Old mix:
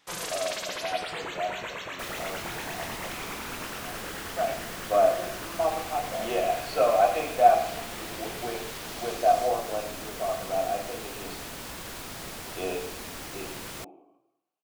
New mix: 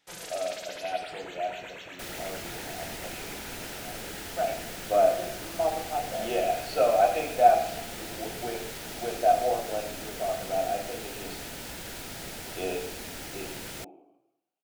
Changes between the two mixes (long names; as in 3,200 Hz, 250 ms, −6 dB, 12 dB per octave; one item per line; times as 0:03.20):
first sound −6.5 dB
master: add parametric band 1,100 Hz −12.5 dB 0.23 octaves